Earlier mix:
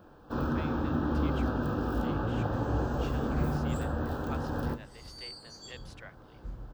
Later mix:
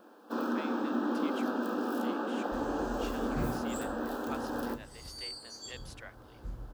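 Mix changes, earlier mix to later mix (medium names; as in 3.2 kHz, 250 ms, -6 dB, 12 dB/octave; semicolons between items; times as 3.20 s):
first sound: add brick-wall FIR high-pass 200 Hz; master: add peaking EQ 11 kHz +9 dB 1.3 oct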